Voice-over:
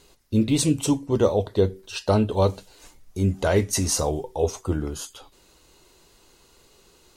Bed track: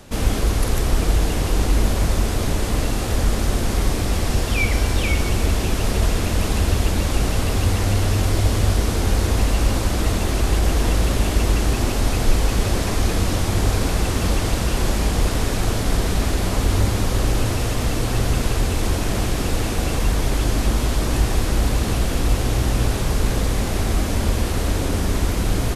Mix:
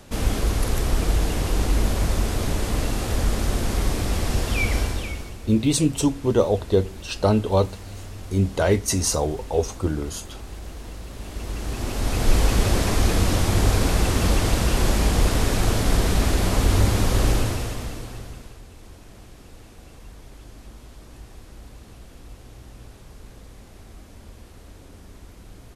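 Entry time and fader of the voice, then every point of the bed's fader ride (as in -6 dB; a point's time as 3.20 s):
5.15 s, +1.0 dB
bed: 4.79 s -3 dB
5.39 s -18.5 dB
11.08 s -18.5 dB
12.37 s 0 dB
17.31 s 0 dB
18.62 s -24 dB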